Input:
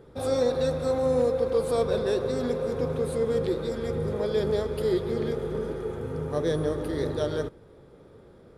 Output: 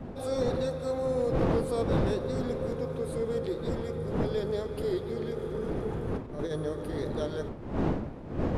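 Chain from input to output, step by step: wind noise 340 Hz -28 dBFS; 5.36–6.56 s: compressor with a negative ratio -26 dBFS, ratio -0.5; hard clipper -14.5 dBFS, distortion -19 dB; trim -5.5 dB

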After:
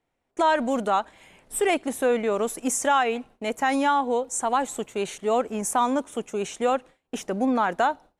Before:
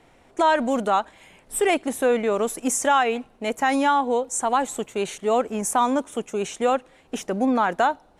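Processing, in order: gate with hold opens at -41 dBFS; trim -2 dB

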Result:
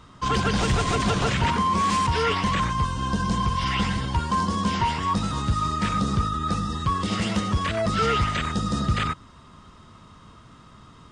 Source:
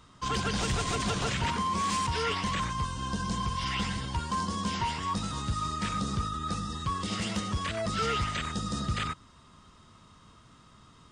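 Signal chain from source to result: treble shelf 3.5 kHz -7.5 dB; trim +8 dB

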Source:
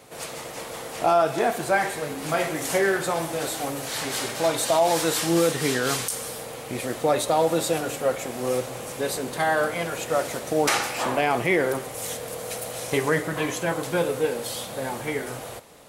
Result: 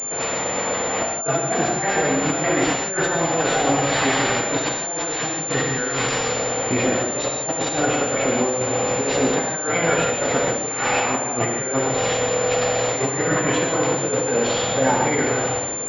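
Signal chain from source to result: bass shelf 62 Hz -10 dB; compressor with a negative ratio -29 dBFS, ratio -0.5; on a send: echo that smears into a reverb 1860 ms, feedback 46%, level -15.5 dB; on the sum: gated-style reverb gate 200 ms flat, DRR 0.5 dB; class-D stage that switches slowly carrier 7.2 kHz; trim +5.5 dB

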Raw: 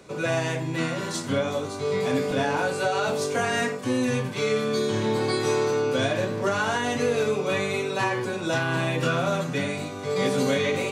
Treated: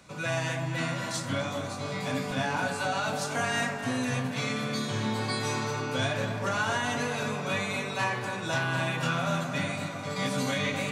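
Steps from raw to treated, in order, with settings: peaking EQ 410 Hz -15 dB 0.77 oct; tape echo 255 ms, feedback 84%, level -5.5 dB, low-pass 1.6 kHz; trim -2 dB

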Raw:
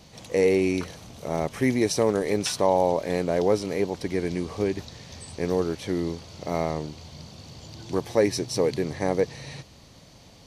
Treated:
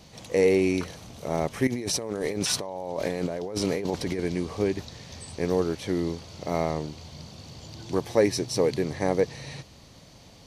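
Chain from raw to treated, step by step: 1.67–4.19 s: compressor with a negative ratio -30 dBFS, ratio -1

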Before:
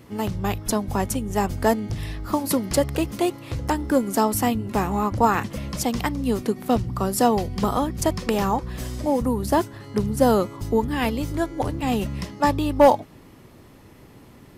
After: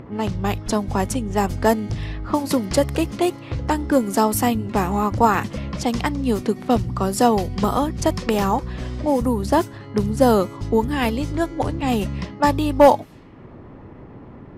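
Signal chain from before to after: level-controlled noise filter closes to 1.2 kHz, open at -18.5 dBFS; upward compressor, threshold -35 dBFS; trim +2.5 dB

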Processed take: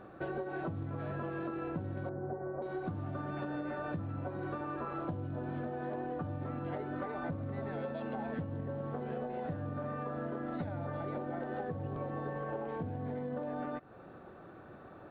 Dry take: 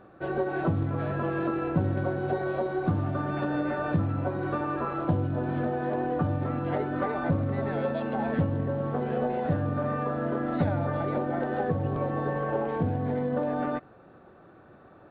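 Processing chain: compression 6:1, threshold -37 dBFS, peak gain reduction 16 dB; 2.09–2.62 s: Bessel low-pass 1 kHz, order 8; trim +1 dB

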